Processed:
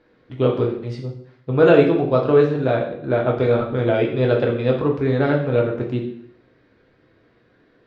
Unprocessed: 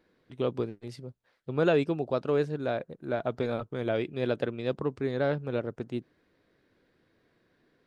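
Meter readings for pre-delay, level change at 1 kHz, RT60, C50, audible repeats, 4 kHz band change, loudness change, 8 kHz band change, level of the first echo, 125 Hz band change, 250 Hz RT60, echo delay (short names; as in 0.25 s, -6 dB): 5 ms, +11.0 dB, 0.65 s, 6.5 dB, none, +7.5 dB, +11.5 dB, n/a, none, +13.5 dB, 0.70 s, none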